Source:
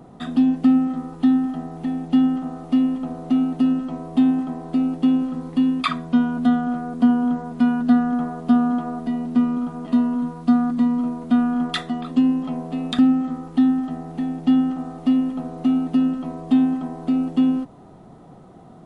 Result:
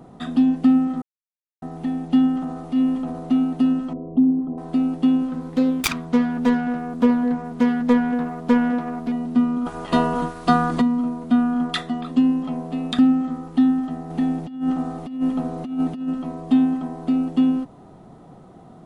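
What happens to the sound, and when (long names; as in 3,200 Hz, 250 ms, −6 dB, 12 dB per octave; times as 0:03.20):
0:01.02–0:01.62: silence
0:02.31–0:03.31: transient designer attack −6 dB, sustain +3 dB
0:03.93–0:04.58: spectral envelope exaggerated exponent 2
0:05.29–0:09.12: phase distortion by the signal itself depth 0.68 ms
0:09.65–0:10.80: ceiling on every frequency bin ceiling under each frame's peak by 20 dB
0:14.10–0:16.09: compressor whose output falls as the input rises −22 dBFS, ratio −0.5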